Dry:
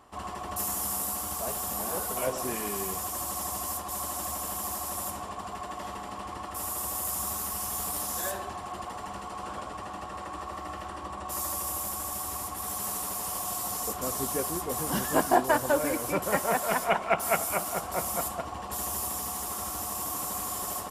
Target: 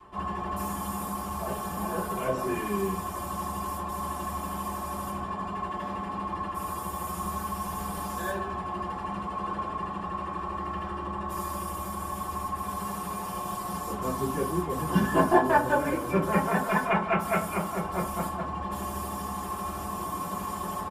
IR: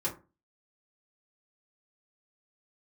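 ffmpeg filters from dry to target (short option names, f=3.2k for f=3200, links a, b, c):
-filter_complex "[1:a]atrim=start_sample=2205[a];[0:a][a]afir=irnorm=-1:irlink=0,adynamicequalizer=threshold=0.0158:dfrequency=540:dqfactor=1.6:tfrequency=540:tqfactor=1.6:attack=5:release=100:ratio=0.375:range=1.5:mode=cutabove:tftype=bell,aecho=1:1:4.6:0.5,areverse,acompressor=mode=upward:threshold=-28dB:ratio=2.5,areverse,bass=f=250:g=4,treble=f=4k:g=-11,volume=-3.5dB"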